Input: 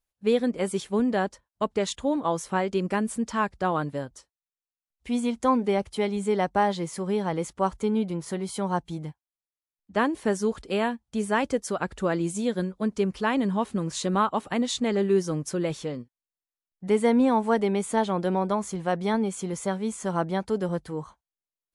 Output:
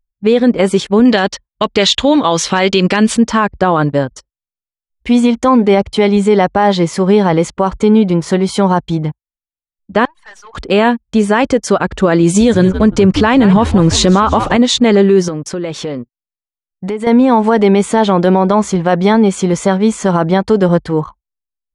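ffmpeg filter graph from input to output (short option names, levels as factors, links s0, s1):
-filter_complex "[0:a]asettb=1/sr,asplit=3[s0][s1][s2];[s0]atrim=end=1.054[s3];[s1]atrim=start=1.05:end=3.17,asetpts=PTS-STARTPTS,afade=t=in:d=0.004:c=qsin,afade=t=out:st=2.116:d=0.004:c=qsin,equalizer=f=3700:t=o:w=1.9:g=13.5,volume=3.55,asoftclip=hard,volume=0.282[s4];[s2]atrim=start=3.166[s5];[s3][s4]acrossfade=d=0.004:c1=hsin:c2=qsin[s6];[s6][s5]acrossfade=d=0.004:c1=qsin:c2=hsin,asettb=1/sr,asplit=3[s7][s8][s9];[s7]atrim=end=10.054[s10];[s8]atrim=start=10.05:end=10.54,asetpts=PTS-STARTPTS,afade=t=in:d=0.004:c=qsin,afade=t=out:st=0.486:d=0.004:c=qsin,highpass=f=910:w=0.5412,highpass=f=910:w=1.3066,aeval=exprs='(tanh(282*val(0)+0.25)-tanh(0.25))/282':c=same[s11];[s9]atrim=start=10.536[s12];[s10][s11]acrossfade=d=0.004:c1=hsin:c2=qsin[s13];[s13][s12]acrossfade=d=0.004:c1=qsin:c2=hsin,asettb=1/sr,asplit=3[s14][s15][s16];[s14]atrim=end=12.234[s17];[s15]atrim=start=12.23:end=14.57,asetpts=PTS-STARTPTS,afade=t=in:d=0.004:c=qsin,afade=t=out:st=2.336:d=0.004:c=qsin,acontrast=41,asplit=4[s18][s19][s20][s21];[s19]adelay=171,afreqshift=-110,volume=0.188[s22];[s20]adelay=342,afreqshift=-220,volume=0.0582[s23];[s21]adelay=513,afreqshift=-330,volume=0.0182[s24];[s18][s22][s23][s24]amix=inputs=4:normalize=0,atrim=end_sample=103194[s25];[s16]atrim=start=14.566[s26];[s17][s25]acrossfade=d=0.004:c1=hsin:c2=qsin[s27];[s27][s26]acrossfade=d=0.004:c1=qsin:c2=hsin,asettb=1/sr,asplit=3[s28][s29][s30];[s28]atrim=end=15.284[s31];[s29]atrim=start=15.28:end=17.07,asetpts=PTS-STARTPTS,afade=t=in:d=0.004:c=qsin,afade=t=out:st=1.786:d=0.004:c=qsin,lowshelf=f=140:g=-9,acompressor=threshold=0.0178:ratio=5:attack=3.2:release=140:knee=1:detection=peak[s32];[s30]atrim=start=17.066[s33];[s31][s32]acrossfade=d=0.004:c1=hsin:c2=qsin[s34];[s34][s33]acrossfade=d=0.004:c1=qsin:c2=hsin,anlmdn=0.01,lowpass=5900,alimiter=level_in=8.91:limit=0.891:release=50:level=0:latency=1,volume=0.891"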